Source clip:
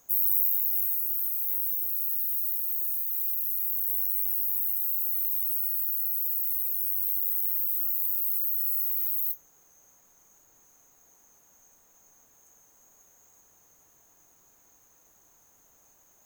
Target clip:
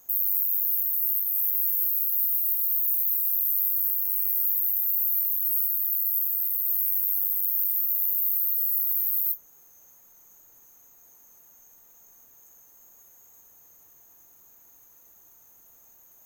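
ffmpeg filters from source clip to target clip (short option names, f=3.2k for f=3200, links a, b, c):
-filter_complex "[0:a]equalizer=f=14k:t=o:w=0.37:g=14,acrossover=split=2200[a][b];[b]alimiter=limit=-14.5dB:level=0:latency=1:release=188[c];[a][c]amix=inputs=2:normalize=0"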